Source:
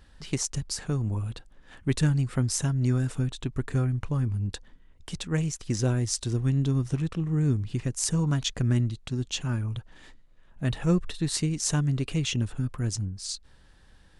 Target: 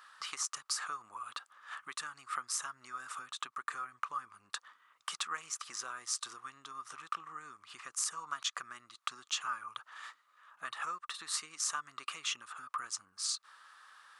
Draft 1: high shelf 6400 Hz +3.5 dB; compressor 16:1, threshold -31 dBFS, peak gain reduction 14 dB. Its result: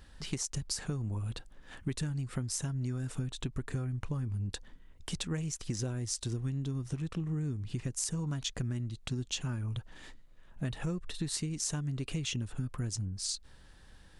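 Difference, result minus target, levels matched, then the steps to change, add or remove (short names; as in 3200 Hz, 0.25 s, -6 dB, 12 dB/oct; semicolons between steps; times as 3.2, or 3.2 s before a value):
1000 Hz band -16.0 dB
add after compressor: resonant high-pass 1200 Hz, resonance Q 10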